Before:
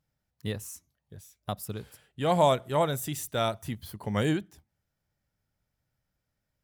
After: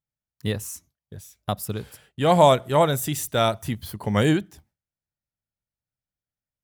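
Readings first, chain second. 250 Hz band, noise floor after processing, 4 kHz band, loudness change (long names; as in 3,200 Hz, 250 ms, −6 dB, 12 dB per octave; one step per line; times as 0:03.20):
+7.0 dB, below −85 dBFS, +7.0 dB, +7.0 dB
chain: noise gate with hold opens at −52 dBFS
level +7 dB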